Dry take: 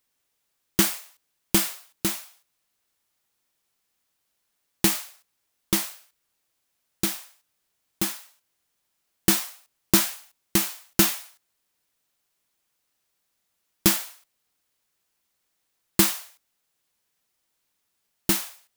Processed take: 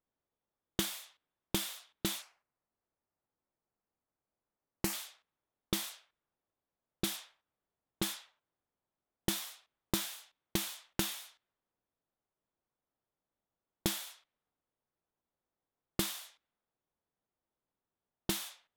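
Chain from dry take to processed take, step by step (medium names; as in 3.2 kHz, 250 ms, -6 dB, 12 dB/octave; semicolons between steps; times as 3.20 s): peaking EQ 3.5 kHz +9.5 dB 0.35 oct, from 2.22 s -8 dB, from 4.93 s +8 dB; level-controlled noise filter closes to 910 Hz, open at -23.5 dBFS; compression 8:1, threshold -25 dBFS, peak gain reduction 12.5 dB; trim -4.5 dB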